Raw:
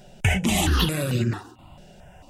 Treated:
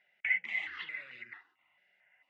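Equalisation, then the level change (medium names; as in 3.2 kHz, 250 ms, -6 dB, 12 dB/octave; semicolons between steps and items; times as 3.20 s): ladder band-pass 2.1 kHz, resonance 90%; distance through air 91 m; tilt EQ -4.5 dB/octave; 0.0 dB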